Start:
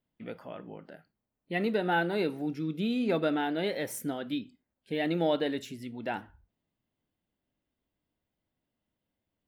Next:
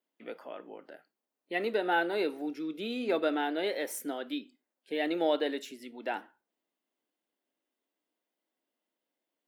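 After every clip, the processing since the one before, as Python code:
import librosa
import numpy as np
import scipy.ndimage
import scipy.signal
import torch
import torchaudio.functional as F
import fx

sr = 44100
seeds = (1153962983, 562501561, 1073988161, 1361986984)

y = scipy.signal.sosfilt(scipy.signal.butter(4, 290.0, 'highpass', fs=sr, output='sos'), x)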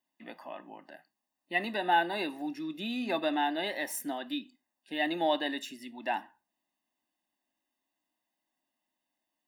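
y = x + 0.85 * np.pad(x, (int(1.1 * sr / 1000.0), 0))[:len(x)]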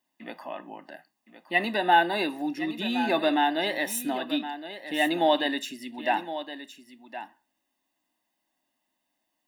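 y = x + 10.0 ** (-12.0 / 20.0) * np.pad(x, (int(1066 * sr / 1000.0), 0))[:len(x)]
y = y * librosa.db_to_amplitude(6.0)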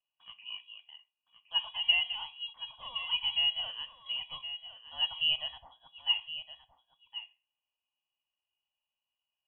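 y = fx.vowel_filter(x, sr, vowel='a')
y = fx.freq_invert(y, sr, carrier_hz=3600)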